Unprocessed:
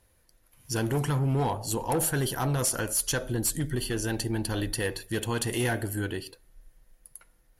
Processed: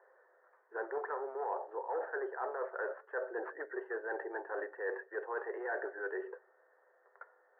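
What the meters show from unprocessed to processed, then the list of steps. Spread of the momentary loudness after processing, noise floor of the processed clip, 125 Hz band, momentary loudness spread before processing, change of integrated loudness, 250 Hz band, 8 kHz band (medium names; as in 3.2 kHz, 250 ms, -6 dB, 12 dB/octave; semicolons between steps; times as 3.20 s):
5 LU, -70 dBFS, under -40 dB, 6 LU, -11.0 dB, -19.0 dB, under -40 dB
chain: Chebyshev band-pass 390–1800 Hz, order 5; reverse; compression 4:1, threshold -47 dBFS, peak gain reduction 18 dB; reverse; trim +9 dB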